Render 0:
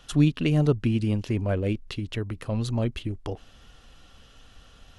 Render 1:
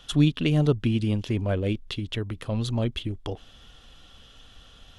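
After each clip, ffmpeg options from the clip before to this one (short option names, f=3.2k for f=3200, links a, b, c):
-af "equalizer=f=3.4k:w=4.7:g=8.5"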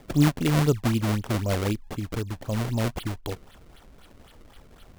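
-af "acrusher=samples=30:mix=1:aa=0.000001:lfo=1:lforange=48:lforate=3.9"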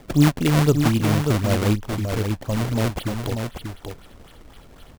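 -af "aecho=1:1:588:0.501,volume=4dB"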